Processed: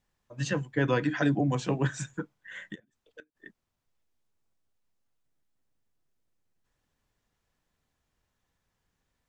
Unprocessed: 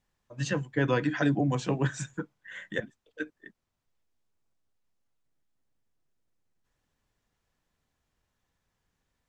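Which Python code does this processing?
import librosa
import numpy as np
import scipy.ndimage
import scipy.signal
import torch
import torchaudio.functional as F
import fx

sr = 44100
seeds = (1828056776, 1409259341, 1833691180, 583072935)

y = fx.gate_flip(x, sr, shuts_db=-32.0, range_db=-28, at=(2.74, 3.35), fade=0.02)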